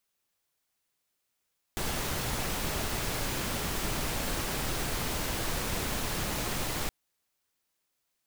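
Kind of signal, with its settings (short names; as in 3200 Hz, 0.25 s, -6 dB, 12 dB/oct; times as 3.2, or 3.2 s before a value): noise pink, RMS -32 dBFS 5.12 s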